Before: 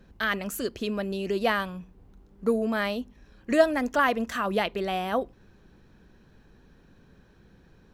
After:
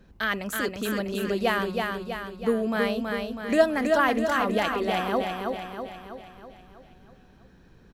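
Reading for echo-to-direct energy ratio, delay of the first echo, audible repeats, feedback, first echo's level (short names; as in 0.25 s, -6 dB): -2.5 dB, 0.324 s, 6, 54%, -4.0 dB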